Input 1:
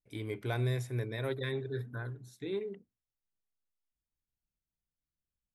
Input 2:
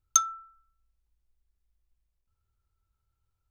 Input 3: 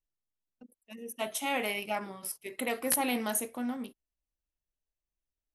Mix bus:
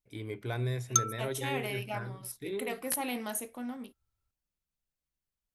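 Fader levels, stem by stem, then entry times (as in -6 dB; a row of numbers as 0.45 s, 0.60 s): -1.0 dB, -4.0 dB, -4.5 dB; 0.00 s, 0.80 s, 0.00 s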